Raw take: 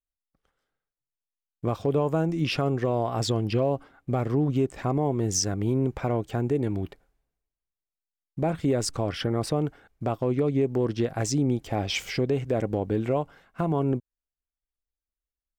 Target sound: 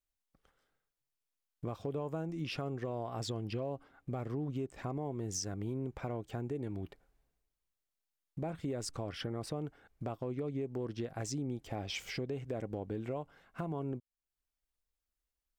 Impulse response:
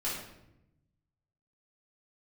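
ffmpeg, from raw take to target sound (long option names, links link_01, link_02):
-af "acompressor=threshold=-50dB:ratio=2,volume=2dB"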